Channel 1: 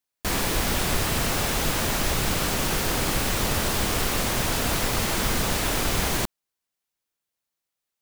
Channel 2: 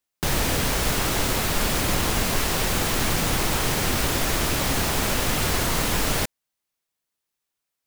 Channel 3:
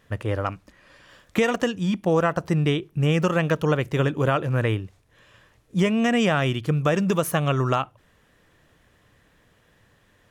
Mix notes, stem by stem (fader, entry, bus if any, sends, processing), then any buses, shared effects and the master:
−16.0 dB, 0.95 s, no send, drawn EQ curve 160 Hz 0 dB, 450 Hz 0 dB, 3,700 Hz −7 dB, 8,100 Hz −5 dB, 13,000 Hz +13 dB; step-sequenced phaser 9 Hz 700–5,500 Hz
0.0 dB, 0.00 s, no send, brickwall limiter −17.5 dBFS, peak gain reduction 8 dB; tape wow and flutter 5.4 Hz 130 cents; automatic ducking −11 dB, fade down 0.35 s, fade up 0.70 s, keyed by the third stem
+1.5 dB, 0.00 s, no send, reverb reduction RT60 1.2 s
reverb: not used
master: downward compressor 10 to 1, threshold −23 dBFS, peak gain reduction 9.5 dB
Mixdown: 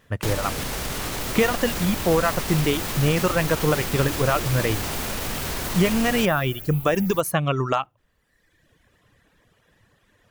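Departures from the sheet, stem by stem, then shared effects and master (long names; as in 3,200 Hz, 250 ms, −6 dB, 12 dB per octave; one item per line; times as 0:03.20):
stem 2 0.0 dB → +9.5 dB
master: missing downward compressor 10 to 1, threshold −23 dBFS, peak gain reduction 9.5 dB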